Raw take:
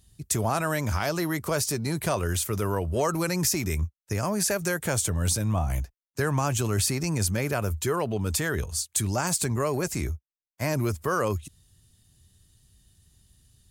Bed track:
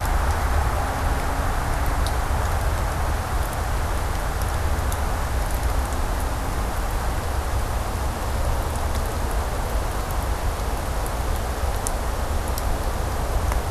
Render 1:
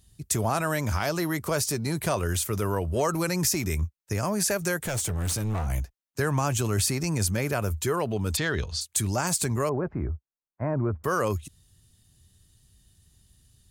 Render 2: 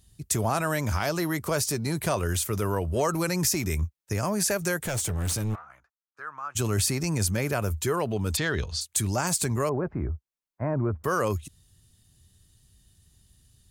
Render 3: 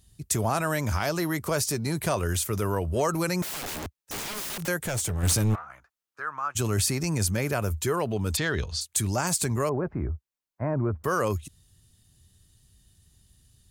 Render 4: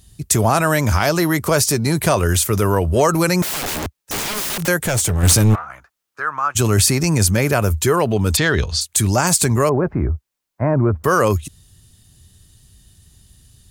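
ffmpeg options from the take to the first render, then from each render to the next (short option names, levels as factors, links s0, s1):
-filter_complex "[0:a]asettb=1/sr,asplit=3[s0][s1][s2];[s0]atrim=end=4.844[s3];[s1]atrim=start=4.84:end=5.67,asetpts=PTS-STARTPTS,afade=t=in:d=0.004:c=qsin,afade=t=out:st=0.826:d=0.004:c=qsin,volume=17.8,asoftclip=hard,volume=0.0562[s4];[s2]atrim=start=5.666[s5];[s3][s4]acrossfade=d=0.004:c1=hsin:c2=qsin[s6];[s6][s5]acrossfade=d=0.004:c1=qsin:c2=hsin,asplit=3[s7][s8][s9];[s7]afade=t=out:st=8.36:d=0.02[s10];[s8]lowpass=f=4200:t=q:w=2.8,afade=t=in:st=8.36:d=0.02,afade=t=out:st=8.8:d=0.02[s11];[s9]afade=t=in:st=8.8:d=0.02[s12];[s10][s11][s12]amix=inputs=3:normalize=0,asettb=1/sr,asplit=3[s13][s14][s15];[s13]atrim=end=9.694[s16];[s14]atrim=start=9.69:end=11.04,asetpts=PTS-STARTPTS,afade=t=in:d=0.004:c=qsin,afade=t=out:st=1.346:d=0.004:c=qsin,lowpass=f=1400:w=0.5412,lowpass=f=1400:w=1.3066[s17];[s15]atrim=start=11.036[s18];[s16][s17]acrossfade=d=0.004:c1=hsin:c2=qsin[s19];[s19][s18]acrossfade=d=0.004:c1=qsin:c2=hsin"
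-filter_complex "[0:a]asplit=3[s0][s1][s2];[s0]afade=t=out:st=5.54:d=0.02[s3];[s1]bandpass=f=1300:t=q:w=5.6,afade=t=in:st=5.54:d=0.02,afade=t=out:st=6.55:d=0.02[s4];[s2]afade=t=in:st=6.55:d=0.02[s5];[s3][s4][s5]amix=inputs=3:normalize=0"
-filter_complex "[0:a]asettb=1/sr,asplit=3[s0][s1][s2];[s0]atrim=end=3.424[s3];[s1]atrim=start=3.42:end=4.68,asetpts=PTS-STARTPTS,afade=t=in:d=0.004:c=qsin,afade=t=out:st=1.256:d=0.004:c=qsin,aeval=exprs='(mod(29.9*val(0)+1,2)-1)/29.9':c=same[s4];[s2]atrim=start=4.676[s5];[s3][s4]acrossfade=d=0.004:c1=hsin:c2=qsin[s6];[s6][s5]acrossfade=d=0.004:c1=qsin:c2=hsin,asettb=1/sr,asplit=3[s7][s8][s9];[s7]atrim=end=5.234[s10];[s8]atrim=start=5.23:end=6.52,asetpts=PTS-STARTPTS,afade=t=in:d=0.004:c=qsin,afade=t=out:st=1.286:d=0.004:c=qsin,acontrast=29[s11];[s9]atrim=start=6.516[s12];[s10][s11]acrossfade=d=0.004:c1=hsin:c2=qsin[s13];[s13][s12]acrossfade=d=0.004:c1=qsin:c2=hsin"
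-af "volume=3.35,alimiter=limit=0.708:level=0:latency=1"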